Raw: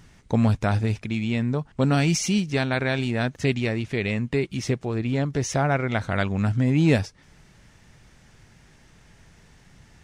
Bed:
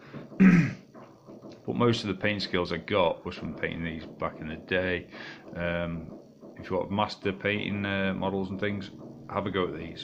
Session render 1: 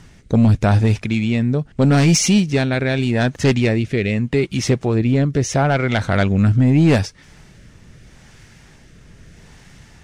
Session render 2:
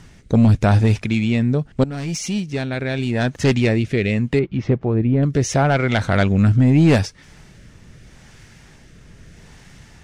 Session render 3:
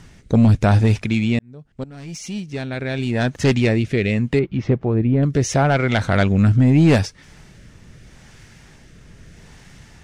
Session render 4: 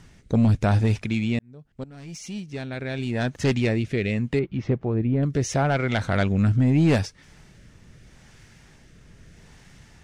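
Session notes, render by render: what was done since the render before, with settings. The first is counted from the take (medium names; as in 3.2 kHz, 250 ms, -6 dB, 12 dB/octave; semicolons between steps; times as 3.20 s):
rotary cabinet horn 0.8 Hz; sine folder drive 6 dB, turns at -7 dBFS
1.84–3.73 s: fade in, from -17 dB; 4.39–5.23 s: tape spacing loss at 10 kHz 42 dB
1.39–3.16 s: fade in
trim -5.5 dB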